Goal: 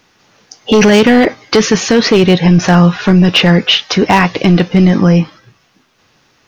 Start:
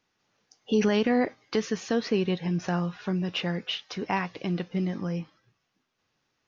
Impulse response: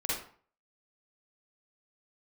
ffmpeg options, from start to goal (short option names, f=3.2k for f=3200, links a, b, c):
-af "aeval=exprs='clip(val(0),-1,0.0891)':c=same,apsyclip=25.5dB,volume=-2.5dB"